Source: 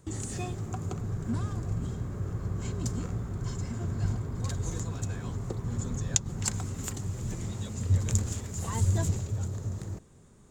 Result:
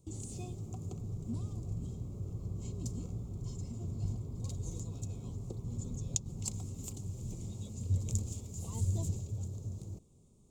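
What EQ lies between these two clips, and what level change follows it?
Butterworth band-stop 1.7 kHz, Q 2.1; peaking EQ 1.5 kHz -14 dB 1.8 oct; -6.5 dB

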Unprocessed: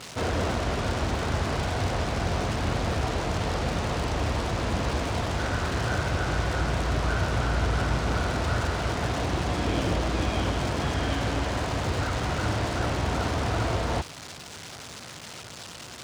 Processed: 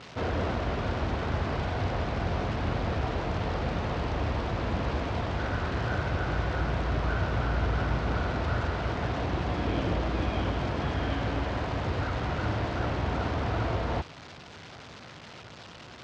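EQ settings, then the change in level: distance through air 180 m; -2.0 dB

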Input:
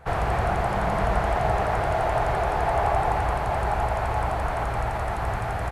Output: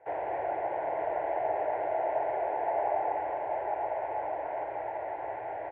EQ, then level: distance through air 330 m; cabinet simulation 310–2600 Hz, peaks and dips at 320 Hz +8 dB, 590 Hz +7 dB, 900 Hz +8 dB, 1.4 kHz +7 dB, 2 kHz +7 dB; static phaser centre 520 Hz, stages 4; -7.5 dB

